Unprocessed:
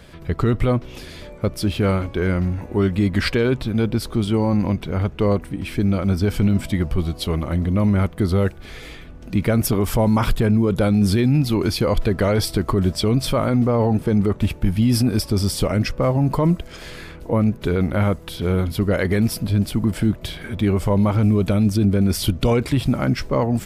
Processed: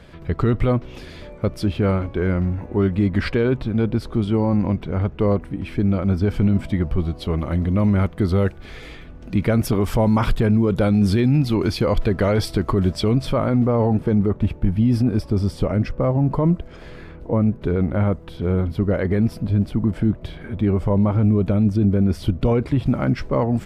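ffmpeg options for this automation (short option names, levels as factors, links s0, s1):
-af "asetnsamples=n=441:p=0,asendcmd='1.66 lowpass f 1700;7.38 lowpass f 3800;13.13 lowpass f 1900;14.15 lowpass f 1000;22.86 lowpass f 2000',lowpass=f=3100:p=1"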